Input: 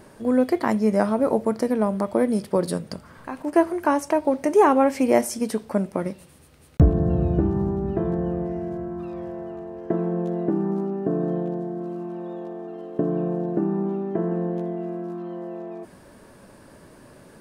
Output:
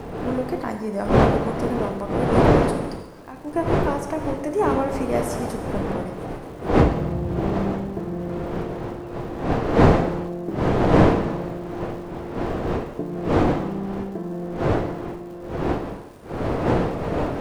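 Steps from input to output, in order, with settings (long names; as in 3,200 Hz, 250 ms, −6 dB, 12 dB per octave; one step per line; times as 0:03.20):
wind on the microphone 530 Hz −18 dBFS
surface crackle 350 per second −38 dBFS
reverb whose tail is shaped and stops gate 410 ms falling, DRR 5.5 dB
level −6.5 dB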